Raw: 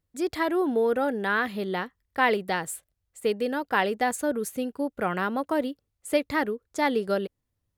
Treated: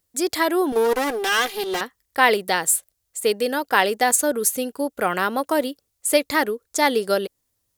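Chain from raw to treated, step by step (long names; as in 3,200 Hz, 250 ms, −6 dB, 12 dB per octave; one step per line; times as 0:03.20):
0:00.72–0:01.81: lower of the sound and its delayed copy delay 2.5 ms
bass and treble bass −9 dB, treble +11 dB
level +6 dB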